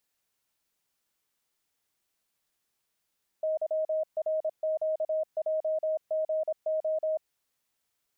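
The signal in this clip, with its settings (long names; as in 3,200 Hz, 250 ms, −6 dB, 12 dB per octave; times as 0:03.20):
Morse code "YRQJGO" 26 words per minute 628 Hz −25.5 dBFS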